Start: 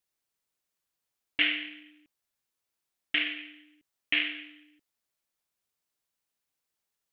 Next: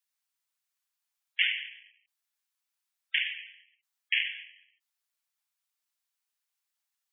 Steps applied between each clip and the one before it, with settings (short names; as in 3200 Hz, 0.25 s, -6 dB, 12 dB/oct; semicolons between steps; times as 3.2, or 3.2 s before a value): spectral gate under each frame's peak -25 dB strong; Bessel high-pass 960 Hz, order 8; spectral gate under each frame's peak -15 dB strong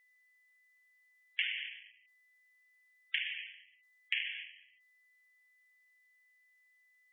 compressor 6:1, threshold -31 dBFS, peak gain reduction 10 dB; whine 2000 Hz -67 dBFS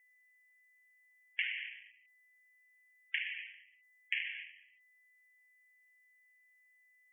fixed phaser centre 800 Hz, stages 8; gain +1 dB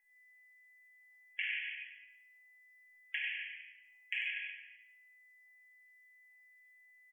resonator 830 Hz, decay 0.19 s, harmonics all, mix 80%; on a send: echo 95 ms -3.5 dB; on the sum: shoebox room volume 420 m³, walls mixed, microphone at 1.4 m; gain +8 dB